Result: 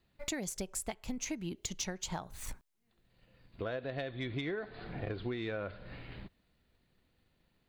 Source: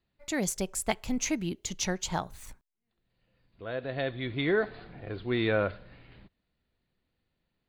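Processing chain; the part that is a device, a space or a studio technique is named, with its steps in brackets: drum-bus smash (transient shaper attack +5 dB, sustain +1 dB; compression 16:1, threshold -39 dBFS, peak gain reduction 21.5 dB; saturation -30.5 dBFS, distortion -22 dB); trim +5.5 dB

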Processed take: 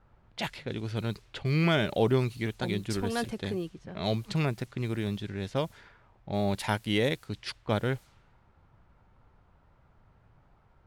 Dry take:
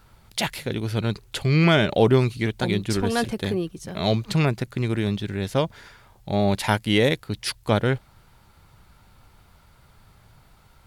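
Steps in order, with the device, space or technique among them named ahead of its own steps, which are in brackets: cassette deck with a dynamic noise filter (white noise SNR 29 dB; level-controlled noise filter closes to 1.1 kHz, open at -20 dBFS); trim -7.5 dB

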